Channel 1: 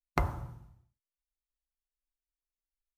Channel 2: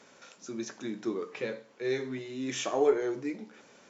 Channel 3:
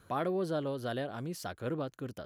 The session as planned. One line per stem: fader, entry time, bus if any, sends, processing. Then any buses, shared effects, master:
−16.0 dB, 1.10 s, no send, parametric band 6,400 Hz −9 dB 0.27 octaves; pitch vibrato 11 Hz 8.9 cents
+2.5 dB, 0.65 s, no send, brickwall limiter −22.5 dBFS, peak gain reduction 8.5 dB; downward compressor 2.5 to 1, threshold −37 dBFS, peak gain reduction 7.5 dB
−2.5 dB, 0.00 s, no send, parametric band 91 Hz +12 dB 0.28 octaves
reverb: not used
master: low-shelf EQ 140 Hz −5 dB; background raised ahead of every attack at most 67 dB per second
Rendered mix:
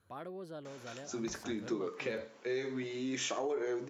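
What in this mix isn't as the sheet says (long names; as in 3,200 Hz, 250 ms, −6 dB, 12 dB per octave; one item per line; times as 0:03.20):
stem 1 −16.0 dB → −23.0 dB
stem 3 −2.5 dB → −12.0 dB
master: missing background raised ahead of every attack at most 67 dB per second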